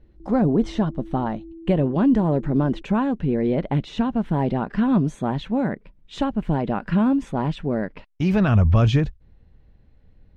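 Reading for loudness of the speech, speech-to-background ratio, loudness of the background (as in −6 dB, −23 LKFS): −22.0 LKFS, 20.0 dB, −42.0 LKFS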